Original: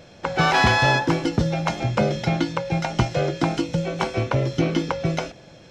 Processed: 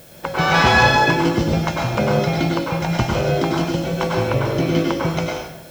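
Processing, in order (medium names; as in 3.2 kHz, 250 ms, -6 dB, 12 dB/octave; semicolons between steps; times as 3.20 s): plate-style reverb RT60 0.83 s, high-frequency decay 0.8×, pre-delay 85 ms, DRR -2 dB; added noise blue -48 dBFS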